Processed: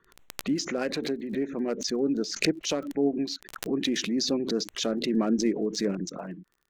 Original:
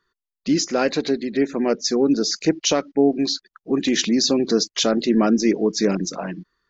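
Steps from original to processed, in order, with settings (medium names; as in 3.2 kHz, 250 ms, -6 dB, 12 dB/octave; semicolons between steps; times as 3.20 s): local Wiener filter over 9 samples; rotary cabinet horn 8 Hz; crackle 22 per s -43 dBFS; swell ahead of each attack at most 90 dB/s; trim -7 dB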